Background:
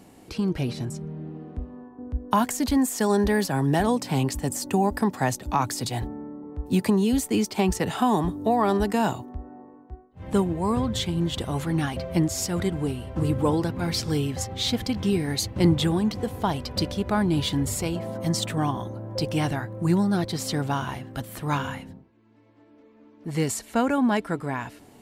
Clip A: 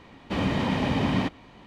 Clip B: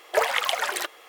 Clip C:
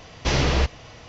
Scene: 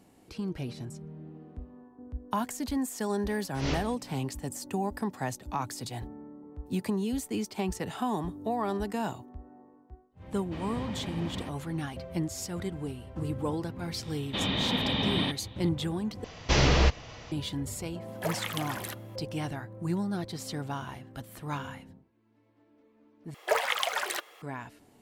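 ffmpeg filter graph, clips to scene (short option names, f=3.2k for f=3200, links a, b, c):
-filter_complex "[3:a]asplit=2[a][b];[1:a]asplit=2[c][d];[2:a]asplit=2[e][f];[0:a]volume=-9dB[g];[a]aeval=exprs='val(0)*pow(10,-21*(0.5-0.5*cos(2*PI*2.4*n/s))/20)':c=same[h];[d]lowpass=f=3.6k:t=q:w=10[i];[e]equalizer=f=12k:w=1.9:g=11[j];[g]asplit=3[k][l][m];[k]atrim=end=16.244[n];[b]atrim=end=1.08,asetpts=PTS-STARTPTS,volume=-1.5dB[o];[l]atrim=start=17.316:end=23.344[p];[f]atrim=end=1.08,asetpts=PTS-STARTPTS,volume=-4.5dB[q];[m]atrim=start=24.416[r];[h]atrim=end=1.08,asetpts=PTS-STARTPTS,volume=-8.5dB,afade=t=in:d=0.004:c=hsin,afade=t=out:st=1.076:d=0.004:c=hsin,adelay=145089S[s];[c]atrim=end=1.66,asetpts=PTS-STARTPTS,volume=-14dB,afade=t=in:d=0.004:c=hsin,afade=t=out:st=1.656:d=0.004:c=hsin,adelay=10210[t];[i]atrim=end=1.66,asetpts=PTS-STARTPTS,volume=-6dB,afade=t=in:d=0.004:c=hsin,afade=t=out:st=1.656:d=0.004:c=hsin,adelay=14030[u];[j]atrim=end=1.08,asetpts=PTS-STARTPTS,volume=-12dB,afade=t=in:d=0.004:c=hsin,afade=t=out:st=1.076:d=0.004:c=hsin,adelay=18080[v];[n][o]acrossfade=d=0.004:c1=hsin:c2=hsin[w];[w][p]acrossfade=d=0.004:c1=hsin:c2=hsin[x];[x][q]acrossfade=d=0.004:c1=hsin:c2=hsin[y];[y][r]acrossfade=d=0.004:c1=hsin:c2=hsin[z];[z][s][t][u][v]amix=inputs=5:normalize=0"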